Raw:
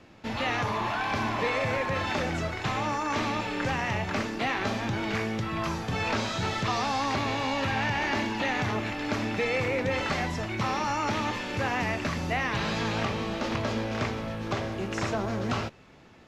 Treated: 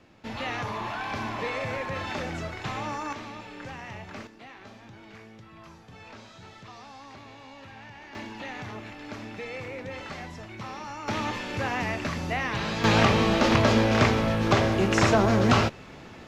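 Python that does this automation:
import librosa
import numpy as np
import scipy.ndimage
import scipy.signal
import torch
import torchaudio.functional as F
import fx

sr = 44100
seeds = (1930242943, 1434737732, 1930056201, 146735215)

y = fx.gain(x, sr, db=fx.steps((0.0, -3.5), (3.13, -11.0), (4.27, -18.0), (8.15, -9.5), (11.08, -0.5), (12.84, 9.0)))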